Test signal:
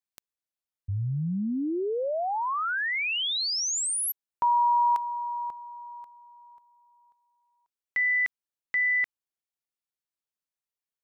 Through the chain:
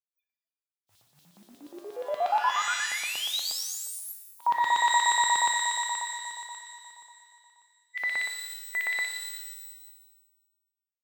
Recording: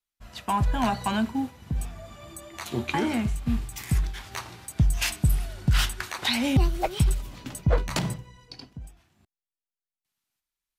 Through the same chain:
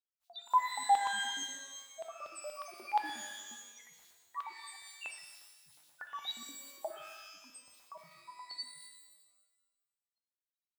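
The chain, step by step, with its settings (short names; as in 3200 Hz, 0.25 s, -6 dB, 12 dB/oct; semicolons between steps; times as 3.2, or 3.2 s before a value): reverse; compressor, threshold -32 dBFS; reverse; low shelf 150 Hz -9 dB; doubler 20 ms -11 dB; de-hum 130.6 Hz, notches 28; loudest bins only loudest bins 1; AGC gain up to 3 dB; modulation noise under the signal 33 dB; LFO high-pass square 8.4 Hz 780–3600 Hz; low shelf 69 Hz -11 dB; shimmer reverb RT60 1.2 s, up +12 st, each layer -2 dB, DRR 6 dB; gain +5.5 dB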